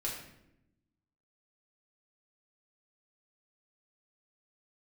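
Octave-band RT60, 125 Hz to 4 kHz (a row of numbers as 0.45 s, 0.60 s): 1.4 s, 1.4 s, 0.95 s, 0.70 s, 0.70 s, 0.60 s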